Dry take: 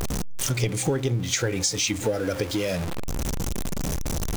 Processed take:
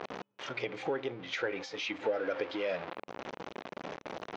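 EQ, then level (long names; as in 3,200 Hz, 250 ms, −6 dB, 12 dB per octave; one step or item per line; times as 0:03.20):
band-pass filter 500–3,300 Hz
high-frequency loss of the air 210 metres
−2.0 dB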